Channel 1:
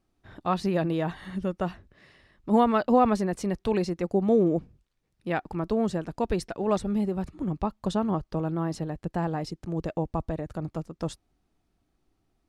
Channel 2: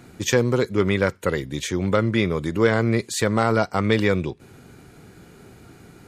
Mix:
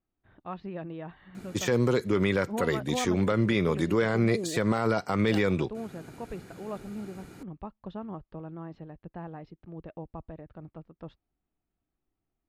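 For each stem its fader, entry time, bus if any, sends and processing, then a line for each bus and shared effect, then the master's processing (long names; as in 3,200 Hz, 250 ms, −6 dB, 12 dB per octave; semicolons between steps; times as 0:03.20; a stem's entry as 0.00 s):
−12.0 dB, 0.00 s, no send, low-pass filter 3,200 Hz 24 dB per octave
−1.0 dB, 1.35 s, no send, high-pass filter 99 Hz; de-essing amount 60%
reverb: not used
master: brickwall limiter −15 dBFS, peak gain reduction 8 dB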